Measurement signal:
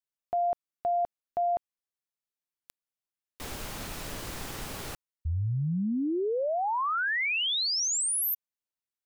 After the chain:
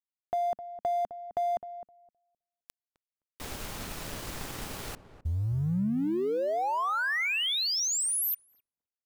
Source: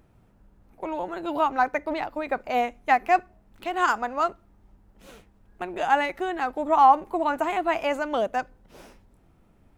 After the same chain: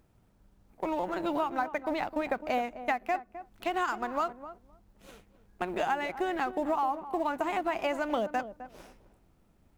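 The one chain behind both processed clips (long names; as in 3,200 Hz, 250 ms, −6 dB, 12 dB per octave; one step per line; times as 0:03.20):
mu-law and A-law mismatch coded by A
dynamic equaliser 210 Hz, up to +6 dB, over −49 dBFS, Q 2.7
downward compressor 16 to 1, threshold −28 dBFS
feedback echo with a low-pass in the loop 259 ms, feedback 16%, low-pass 910 Hz, level −11 dB
level +2 dB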